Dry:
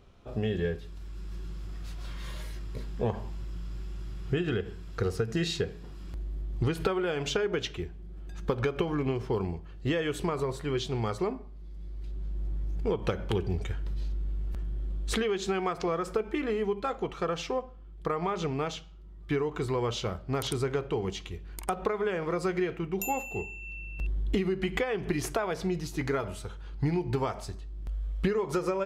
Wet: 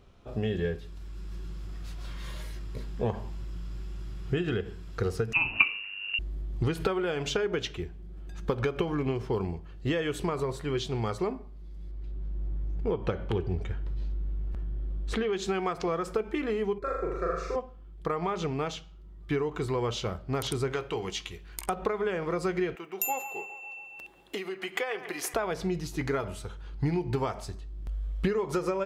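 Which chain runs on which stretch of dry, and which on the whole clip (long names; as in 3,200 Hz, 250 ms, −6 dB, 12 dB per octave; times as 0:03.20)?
0:05.33–0:06.19: transient designer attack +10 dB, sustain +6 dB + voice inversion scrambler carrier 2,800 Hz
0:11.91–0:15.33: low-pass filter 2,200 Hz 6 dB per octave + hum removal 194.1 Hz, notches 25
0:16.78–0:17.56: high-shelf EQ 3,900 Hz −9.5 dB + phaser with its sweep stopped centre 840 Hz, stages 6 + flutter between parallel walls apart 6.9 metres, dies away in 0.98 s
0:20.72–0:21.68: tilt shelving filter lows −5.5 dB, about 770 Hz + double-tracking delay 17 ms −13 dB
0:22.75–0:25.34: high-pass filter 510 Hz + high-shelf EQ 11,000 Hz +11 dB + delay with a band-pass on its return 139 ms, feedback 66%, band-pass 1,300 Hz, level −10 dB
whole clip: no processing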